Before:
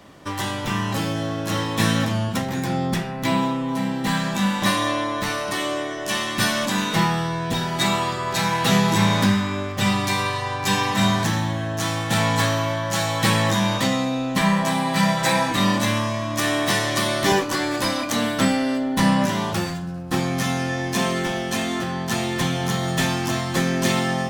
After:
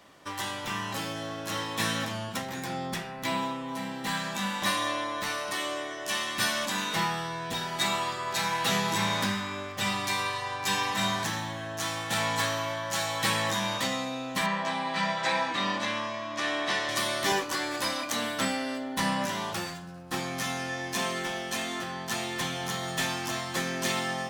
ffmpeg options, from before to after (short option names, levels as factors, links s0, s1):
-filter_complex "[0:a]asettb=1/sr,asplit=3[s0][s1][s2];[s0]atrim=end=14.464[s3];[s1]atrim=start=14.46:end=16.89,asetpts=PTS-STARTPTS,afade=t=in:d=0.004:c=qsin,afade=t=out:st=2.426:d=0.004:c=qsin,highpass=170,lowpass=4500[s4];[s2]atrim=start=16.886[s5];[s3][s4]acrossfade=d=0.004:c1=hsin:c2=qsin[s6];[s6][s5]acrossfade=d=0.004:c1=qsin:c2=hsin,lowshelf=f=380:g=-11,volume=0.562"